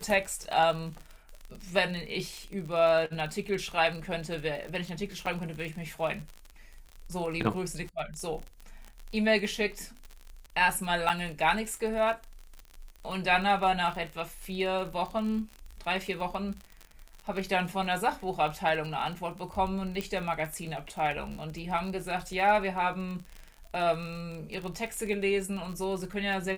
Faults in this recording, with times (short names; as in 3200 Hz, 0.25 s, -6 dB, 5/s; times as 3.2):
crackle 42/s -35 dBFS
5.26–5.27 gap 6.2 ms
11.09–11.1 gap 6.8 ms
20.01 pop -19 dBFS